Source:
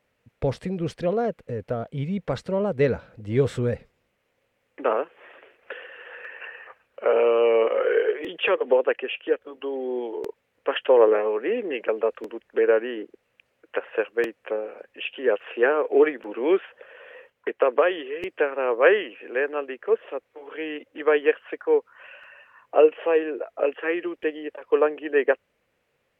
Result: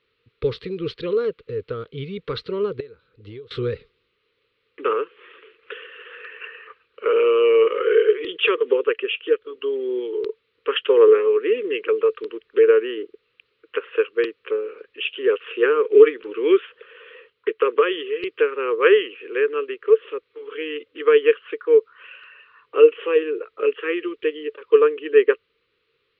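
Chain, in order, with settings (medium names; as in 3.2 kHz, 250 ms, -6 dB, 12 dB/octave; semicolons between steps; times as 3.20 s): FFT filter 120 Hz 0 dB, 230 Hz -6 dB, 440 Hz +11 dB, 680 Hz -22 dB, 1.2 kHz +8 dB, 1.7 kHz +1 dB, 4.1 kHz +14 dB, 7.1 kHz -20 dB; 2.80–3.51 s: compression 12:1, threshold -34 dBFS, peak gain reduction 27 dB; trim -2.5 dB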